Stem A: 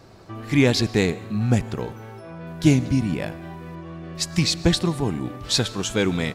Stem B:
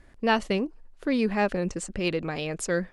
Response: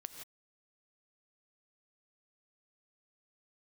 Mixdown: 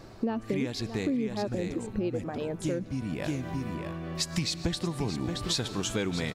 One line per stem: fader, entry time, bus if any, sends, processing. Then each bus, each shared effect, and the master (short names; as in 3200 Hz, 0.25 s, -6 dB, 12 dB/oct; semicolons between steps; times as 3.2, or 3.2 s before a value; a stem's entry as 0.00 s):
0.0 dB, 0.00 s, no send, echo send -12.5 dB, auto duck -12 dB, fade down 1.25 s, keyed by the second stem
-2.0 dB, 0.00 s, no send, echo send -21.5 dB, reverb removal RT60 1.9 s; EQ curve 140 Hz 0 dB, 240 Hz +12 dB, 2200 Hz -9 dB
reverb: off
echo: echo 0.625 s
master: compressor 6:1, threshold -27 dBFS, peak gain reduction 13.5 dB